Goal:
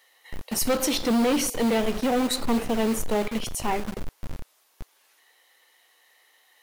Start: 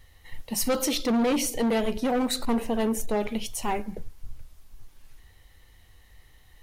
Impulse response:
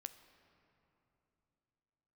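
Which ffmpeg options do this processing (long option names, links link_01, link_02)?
-filter_complex "[0:a]acrossover=split=420|960[link_01][link_02][link_03];[link_01]acrusher=bits=5:mix=0:aa=0.000001[link_04];[link_04][link_02][link_03]amix=inputs=3:normalize=0,volume=1.5dB"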